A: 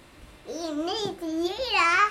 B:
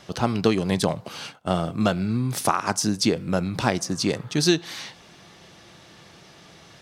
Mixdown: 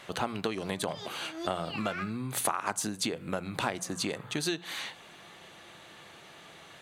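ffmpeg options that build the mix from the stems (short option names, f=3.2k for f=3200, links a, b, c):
-filter_complex "[0:a]acompressor=threshold=-27dB:ratio=2,equalizer=f=1.8k:t=o:w=2.5:g=9,volume=-5.5dB[a];[1:a]equalizer=f=5.3k:w=3.5:g=-15,bandreject=f=60:t=h:w=6,bandreject=f=120:t=h:w=6,bandreject=f=180:t=h:w=6,acompressor=threshold=-25dB:ratio=6,volume=1dB,asplit=2[b][c];[c]apad=whole_len=92805[d];[a][d]sidechaincompress=threshold=-44dB:ratio=8:attack=16:release=154[e];[e][b]amix=inputs=2:normalize=0,lowshelf=f=340:g=-10.5"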